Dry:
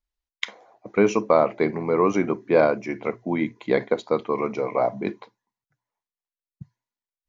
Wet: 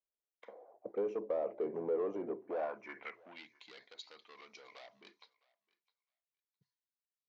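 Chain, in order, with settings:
downward compressor 2.5 to 1, threshold −25 dBFS, peak gain reduction 9 dB
soft clipping −26.5 dBFS, distortion −8 dB
band-pass filter sweep 500 Hz → 4,400 Hz, 0:02.37–0:03.49
feedback echo with a high-pass in the loop 660 ms, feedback 16%, high-pass 970 Hz, level −20 dB
one half of a high-frequency compander decoder only

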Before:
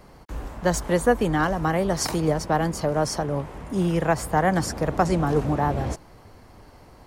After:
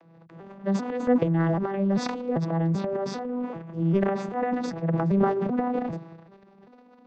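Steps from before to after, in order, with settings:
vocoder with an arpeggio as carrier minor triad, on E3, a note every 392 ms
low-pass filter 4,000 Hz 12 dB per octave
transient designer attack −3 dB, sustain +12 dB
level −2.5 dB

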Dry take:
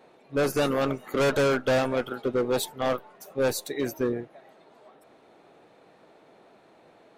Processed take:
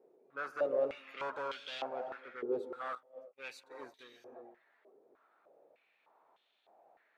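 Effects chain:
reverb whose tail is shaped and stops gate 370 ms rising, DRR 8.5 dB
0:02.95–0:03.99: downward expander −27 dBFS
band-pass on a step sequencer 3.3 Hz 410–3,300 Hz
level −3.5 dB

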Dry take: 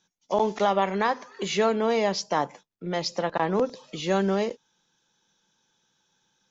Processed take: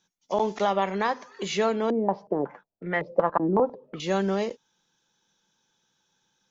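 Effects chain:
0:01.90–0:04.00: low-pass on a step sequencer 5.4 Hz 310–1,900 Hz
level −1.5 dB

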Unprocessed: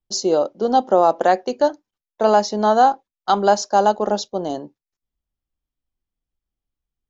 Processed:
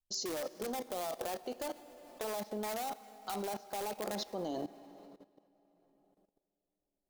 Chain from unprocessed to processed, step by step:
flanger 0.41 Hz, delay 1.2 ms, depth 7.1 ms, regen +66%
treble cut that deepens with the level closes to 1,600 Hz, closed at −19 dBFS
in parallel at −6 dB: wrap-around overflow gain 17 dB
on the sum: downward compressor 3 to 1, threshold −20 dBFS, peak gain reduction 6 dB
high-shelf EQ 5,400 Hz +11 dB
hum removal 230.2 Hz, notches 29
convolution reverb RT60 3.6 s, pre-delay 50 ms, DRR 16 dB
output level in coarse steps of 17 dB
level −3.5 dB

